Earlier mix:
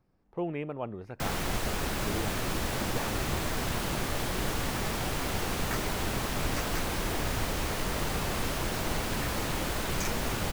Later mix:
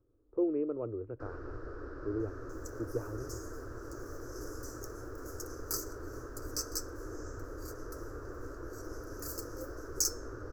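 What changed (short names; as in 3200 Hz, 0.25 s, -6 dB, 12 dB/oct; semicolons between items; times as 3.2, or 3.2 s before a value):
speech: add brick-wall FIR low-pass 2900 Hz; first sound: add ladder low-pass 1800 Hz, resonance 65%; master: add EQ curve 120 Hz 0 dB, 170 Hz -27 dB, 300 Hz +5 dB, 480 Hz +4 dB, 800 Hz -17 dB, 1300 Hz -5 dB, 2100 Hz -27 dB, 3400 Hz -19 dB, 5100 Hz +10 dB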